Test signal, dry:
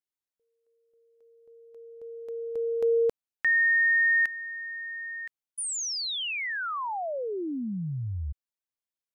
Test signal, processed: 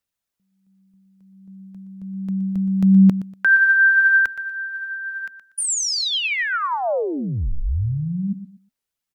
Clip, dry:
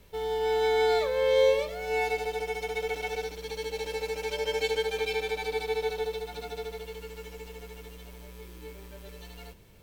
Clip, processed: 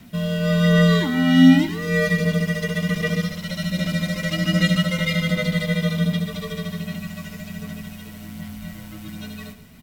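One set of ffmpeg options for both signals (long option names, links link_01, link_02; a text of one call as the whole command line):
ffmpeg -i in.wav -af "afreqshift=-270,aecho=1:1:120|240|360:0.211|0.0571|0.0154,aphaser=in_gain=1:out_gain=1:delay=2.1:decay=0.26:speed=1.3:type=sinusoidal,volume=8.5dB" out.wav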